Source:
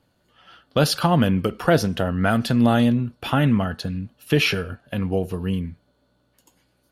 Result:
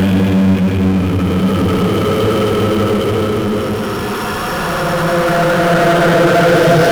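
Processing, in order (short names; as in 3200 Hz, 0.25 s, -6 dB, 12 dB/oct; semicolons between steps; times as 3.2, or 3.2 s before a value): Paulstretch 16×, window 0.25 s, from 1.31; power-law curve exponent 0.5; gain +1 dB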